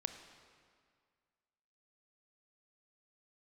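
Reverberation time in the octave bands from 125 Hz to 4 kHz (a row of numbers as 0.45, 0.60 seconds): 2.0, 2.0, 1.9, 2.0, 1.9, 1.6 seconds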